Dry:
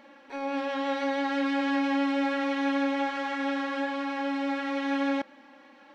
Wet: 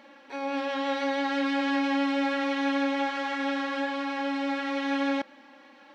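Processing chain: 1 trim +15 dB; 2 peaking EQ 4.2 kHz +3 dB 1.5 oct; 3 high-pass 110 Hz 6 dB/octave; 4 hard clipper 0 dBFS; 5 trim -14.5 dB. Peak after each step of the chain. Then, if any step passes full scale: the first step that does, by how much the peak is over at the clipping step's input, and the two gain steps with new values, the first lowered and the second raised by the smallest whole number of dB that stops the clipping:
-2.5 dBFS, -2.0 dBFS, -2.0 dBFS, -2.0 dBFS, -16.5 dBFS; nothing clips

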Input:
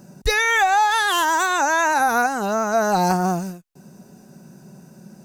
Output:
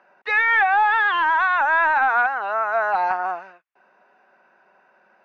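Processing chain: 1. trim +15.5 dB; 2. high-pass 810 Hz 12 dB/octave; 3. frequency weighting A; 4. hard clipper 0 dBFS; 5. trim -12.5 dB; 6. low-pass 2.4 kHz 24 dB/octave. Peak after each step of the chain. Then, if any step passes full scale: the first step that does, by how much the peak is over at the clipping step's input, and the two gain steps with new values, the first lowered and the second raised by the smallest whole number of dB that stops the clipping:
+8.5 dBFS, +7.0 dBFS, +7.0 dBFS, 0.0 dBFS, -12.5 dBFS, -11.0 dBFS; step 1, 7.0 dB; step 1 +8.5 dB, step 5 -5.5 dB

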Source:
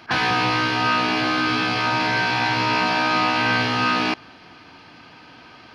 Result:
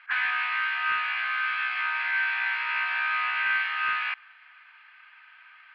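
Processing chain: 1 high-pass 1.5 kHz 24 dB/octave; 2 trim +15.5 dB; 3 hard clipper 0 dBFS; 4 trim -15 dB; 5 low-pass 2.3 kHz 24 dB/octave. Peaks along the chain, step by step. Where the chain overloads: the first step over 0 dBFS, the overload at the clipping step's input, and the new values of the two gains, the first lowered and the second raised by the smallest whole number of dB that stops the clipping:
-11.5 dBFS, +4.0 dBFS, 0.0 dBFS, -15.0 dBFS, -15.5 dBFS; step 2, 4.0 dB; step 2 +11.5 dB, step 4 -11 dB

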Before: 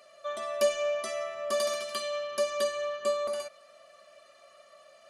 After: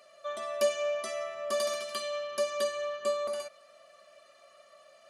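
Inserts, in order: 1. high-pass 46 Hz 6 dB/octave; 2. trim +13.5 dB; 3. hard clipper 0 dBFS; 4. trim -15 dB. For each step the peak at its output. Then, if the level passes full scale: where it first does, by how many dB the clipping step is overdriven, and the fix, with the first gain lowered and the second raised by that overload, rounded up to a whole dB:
-15.0 dBFS, -1.5 dBFS, -1.5 dBFS, -16.5 dBFS; nothing clips

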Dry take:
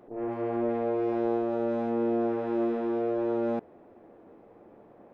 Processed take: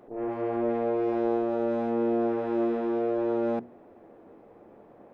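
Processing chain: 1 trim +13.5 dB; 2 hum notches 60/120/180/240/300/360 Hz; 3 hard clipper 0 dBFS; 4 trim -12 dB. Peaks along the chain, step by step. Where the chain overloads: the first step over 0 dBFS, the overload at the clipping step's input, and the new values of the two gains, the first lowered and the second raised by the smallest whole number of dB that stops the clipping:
-3.5 dBFS, -3.5 dBFS, -3.5 dBFS, -15.5 dBFS; nothing clips

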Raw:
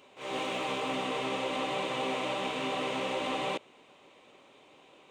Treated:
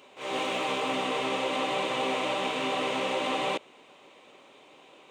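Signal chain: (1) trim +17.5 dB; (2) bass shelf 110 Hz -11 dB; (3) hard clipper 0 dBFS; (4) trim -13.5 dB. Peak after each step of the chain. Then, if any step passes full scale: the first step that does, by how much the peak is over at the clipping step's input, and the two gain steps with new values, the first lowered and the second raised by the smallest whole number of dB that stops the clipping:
-3.5 dBFS, -4.0 dBFS, -4.0 dBFS, -17.5 dBFS; nothing clips

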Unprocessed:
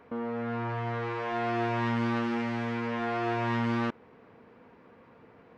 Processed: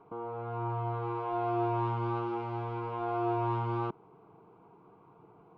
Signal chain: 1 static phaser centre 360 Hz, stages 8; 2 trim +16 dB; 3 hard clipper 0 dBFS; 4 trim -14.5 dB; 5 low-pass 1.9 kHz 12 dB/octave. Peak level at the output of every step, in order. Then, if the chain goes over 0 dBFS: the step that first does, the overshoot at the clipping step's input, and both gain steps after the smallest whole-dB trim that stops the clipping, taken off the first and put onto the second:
-21.5 dBFS, -5.5 dBFS, -5.5 dBFS, -20.0 dBFS, -20.5 dBFS; nothing clips

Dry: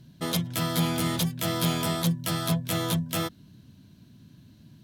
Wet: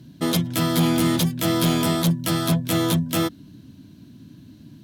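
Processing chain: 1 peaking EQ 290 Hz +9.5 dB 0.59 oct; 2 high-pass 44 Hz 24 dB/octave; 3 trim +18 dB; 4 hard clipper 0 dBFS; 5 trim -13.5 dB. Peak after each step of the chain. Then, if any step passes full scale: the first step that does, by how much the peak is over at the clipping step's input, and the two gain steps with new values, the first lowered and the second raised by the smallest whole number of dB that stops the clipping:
-11.5 dBFS, -11.5 dBFS, +6.5 dBFS, 0.0 dBFS, -13.5 dBFS; step 3, 6.5 dB; step 3 +11 dB, step 5 -6.5 dB

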